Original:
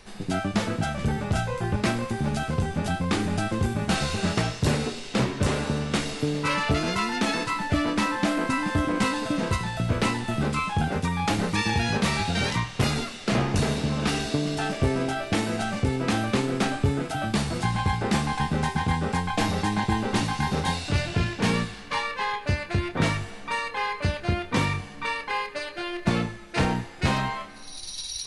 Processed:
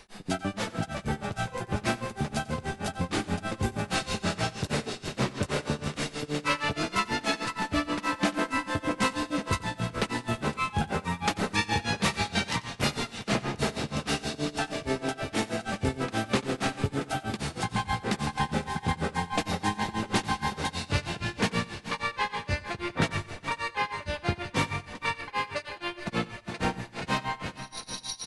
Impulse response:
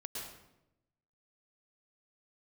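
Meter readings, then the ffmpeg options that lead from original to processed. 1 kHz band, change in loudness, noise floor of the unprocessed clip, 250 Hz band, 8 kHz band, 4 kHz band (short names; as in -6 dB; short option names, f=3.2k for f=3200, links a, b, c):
-2.5 dB, -4.0 dB, -40 dBFS, -5.5 dB, -2.5 dB, -2.5 dB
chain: -filter_complex "[0:a]asplit=2[a][b];[b]aecho=0:1:409|818|1227|1636|2045|2454|2863:0.251|0.148|0.0874|0.0516|0.0304|0.018|0.0106[c];[a][c]amix=inputs=2:normalize=0,tremolo=f=6.3:d=1,lowshelf=f=280:g=-5.5,asplit=2[d][e];[e]aecho=0:1:92:0.1[f];[d][f]amix=inputs=2:normalize=0,volume=1.5dB"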